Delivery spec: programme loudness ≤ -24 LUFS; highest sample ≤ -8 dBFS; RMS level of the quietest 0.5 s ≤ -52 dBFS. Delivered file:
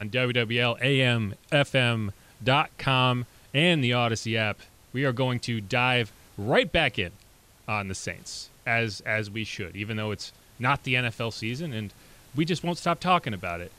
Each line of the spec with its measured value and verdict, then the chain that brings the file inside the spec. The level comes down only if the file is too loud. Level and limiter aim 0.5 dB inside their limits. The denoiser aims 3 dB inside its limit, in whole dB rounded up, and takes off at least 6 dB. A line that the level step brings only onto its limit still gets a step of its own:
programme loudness -26.0 LUFS: OK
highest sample -10.0 dBFS: OK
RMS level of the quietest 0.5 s -56 dBFS: OK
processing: none

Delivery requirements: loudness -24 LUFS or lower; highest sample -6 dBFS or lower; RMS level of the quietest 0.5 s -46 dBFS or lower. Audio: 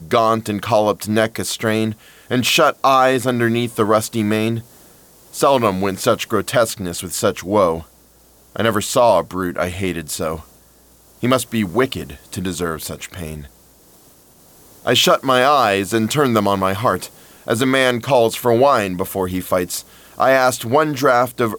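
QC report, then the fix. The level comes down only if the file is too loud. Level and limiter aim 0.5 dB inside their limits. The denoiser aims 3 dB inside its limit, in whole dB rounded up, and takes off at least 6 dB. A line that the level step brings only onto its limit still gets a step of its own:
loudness -17.5 LUFS: fail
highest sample -3.5 dBFS: fail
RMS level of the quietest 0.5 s -50 dBFS: OK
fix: gain -7 dB

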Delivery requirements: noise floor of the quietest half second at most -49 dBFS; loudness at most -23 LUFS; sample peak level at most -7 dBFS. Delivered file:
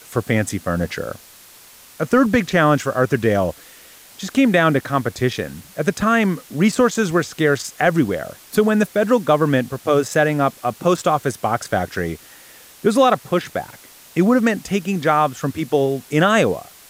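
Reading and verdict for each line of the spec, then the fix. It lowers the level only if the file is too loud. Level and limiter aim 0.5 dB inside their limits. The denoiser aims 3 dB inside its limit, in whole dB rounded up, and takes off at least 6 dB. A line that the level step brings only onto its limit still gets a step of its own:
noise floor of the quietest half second -45 dBFS: fail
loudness -19.0 LUFS: fail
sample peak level -4.0 dBFS: fail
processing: gain -4.5 dB

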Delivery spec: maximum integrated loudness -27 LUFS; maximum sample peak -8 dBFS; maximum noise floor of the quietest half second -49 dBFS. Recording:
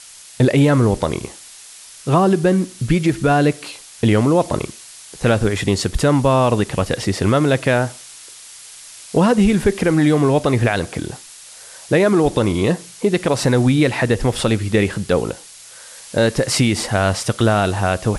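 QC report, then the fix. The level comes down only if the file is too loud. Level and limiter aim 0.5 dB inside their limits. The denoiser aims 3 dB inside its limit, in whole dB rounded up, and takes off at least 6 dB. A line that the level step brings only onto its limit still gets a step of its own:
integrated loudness -17.5 LUFS: fail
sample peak -5.0 dBFS: fail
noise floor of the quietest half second -40 dBFS: fail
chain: gain -10 dB

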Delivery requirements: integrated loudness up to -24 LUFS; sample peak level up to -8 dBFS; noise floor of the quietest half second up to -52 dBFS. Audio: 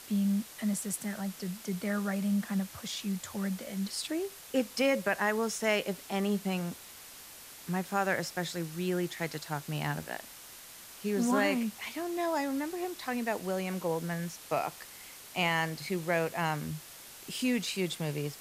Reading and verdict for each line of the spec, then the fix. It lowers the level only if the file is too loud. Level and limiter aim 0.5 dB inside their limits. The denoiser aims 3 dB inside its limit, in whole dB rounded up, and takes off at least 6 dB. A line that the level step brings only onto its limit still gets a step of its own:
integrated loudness -33.0 LUFS: OK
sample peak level -15.5 dBFS: OK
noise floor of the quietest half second -50 dBFS: fail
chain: denoiser 6 dB, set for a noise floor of -50 dBFS

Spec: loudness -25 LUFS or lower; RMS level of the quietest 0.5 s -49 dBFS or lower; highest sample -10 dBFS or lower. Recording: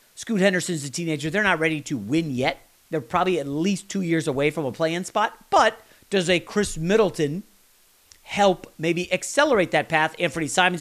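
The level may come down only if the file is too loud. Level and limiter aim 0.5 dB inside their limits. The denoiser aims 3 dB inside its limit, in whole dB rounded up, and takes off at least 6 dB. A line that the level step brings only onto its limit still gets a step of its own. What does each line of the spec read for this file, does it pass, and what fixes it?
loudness -23.0 LUFS: fail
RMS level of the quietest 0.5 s -58 dBFS: OK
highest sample -4.5 dBFS: fail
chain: gain -2.5 dB; limiter -10.5 dBFS

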